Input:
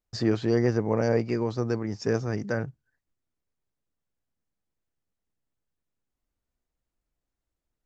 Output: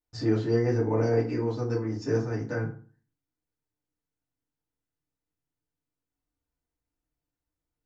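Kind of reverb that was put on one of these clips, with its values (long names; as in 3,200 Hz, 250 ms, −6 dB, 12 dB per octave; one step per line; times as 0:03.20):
feedback delay network reverb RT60 0.41 s, low-frequency decay 1.2×, high-frequency decay 0.6×, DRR −6 dB
level −10 dB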